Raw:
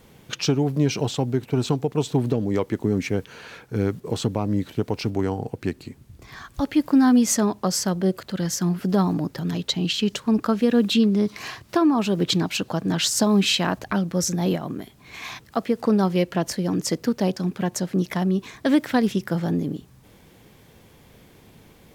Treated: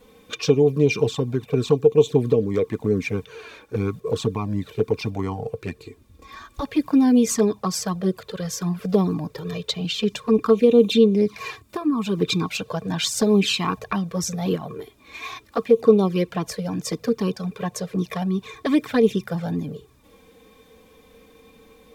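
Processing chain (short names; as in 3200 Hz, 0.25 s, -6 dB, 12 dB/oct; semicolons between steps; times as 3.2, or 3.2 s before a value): spectral gain 11.56–12.06, 320–6600 Hz -7 dB; small resonant body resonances 450/1100/2400/3600 Hz, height 14 dB, ringing for 70 ms; envelope flanger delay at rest 4.1 ms, full sweep at -11.5 dBFS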